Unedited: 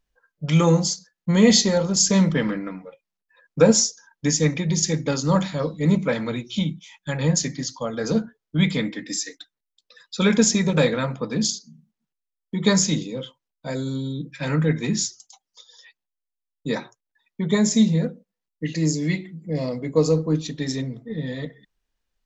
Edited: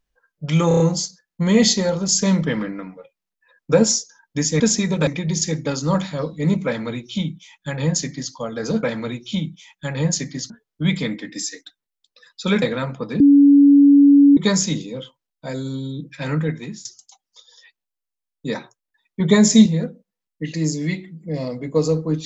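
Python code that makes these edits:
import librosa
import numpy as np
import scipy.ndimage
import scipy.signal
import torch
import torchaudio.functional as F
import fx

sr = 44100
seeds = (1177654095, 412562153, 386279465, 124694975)

y = fx.edit(x, sr, fx.stutter(start_s=0.68, slice_s=0.03, count=5),
    fx.duplicate(start_s=6.07, length_s=1.67, to_s=8.24),
    fx.move(start_s=10.36, length_s=0.47, to_s=4.48),
    fx.bleep(start_s=11.41, length_s=1.17, hz=283.0, db=-7.0),
    fx.fade_out_to(start_s=14.56, length_s=0.5, floor_db=-22.5),
    fx.clip_gain(start_s=17.41, length_s=0.46, db=6.0), tone=tone)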